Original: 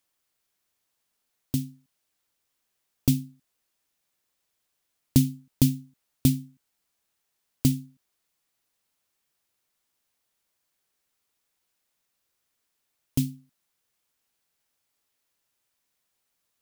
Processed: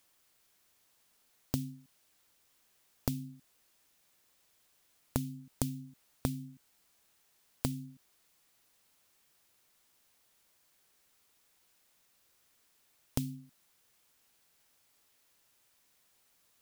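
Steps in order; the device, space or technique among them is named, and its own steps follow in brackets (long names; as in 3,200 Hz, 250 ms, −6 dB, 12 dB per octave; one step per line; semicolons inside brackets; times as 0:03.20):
serial compression, peaks first (downward compressor 10 to 1, threshold −26 dBFS, peak gain reduction 13 dB; downward compressor 2.5 to 1, threshold −42 dBFS, peak gain reduction 13 dB)
level +7.5 dB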